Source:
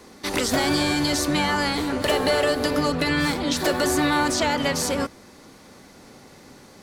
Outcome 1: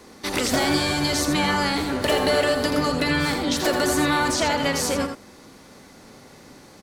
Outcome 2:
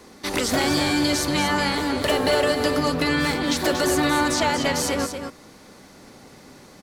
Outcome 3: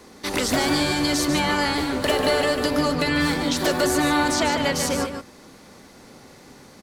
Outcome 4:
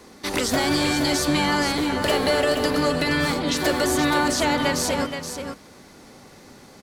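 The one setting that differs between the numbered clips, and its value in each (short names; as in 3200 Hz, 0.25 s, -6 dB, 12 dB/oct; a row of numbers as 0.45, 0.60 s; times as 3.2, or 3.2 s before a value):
echo, time: 83, 234, 147, 474 ms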